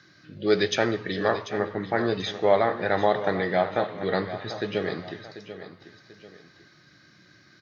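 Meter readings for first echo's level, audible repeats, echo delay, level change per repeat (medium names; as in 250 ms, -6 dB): -12.5 dB, 2, 740 ms, -8.5 dB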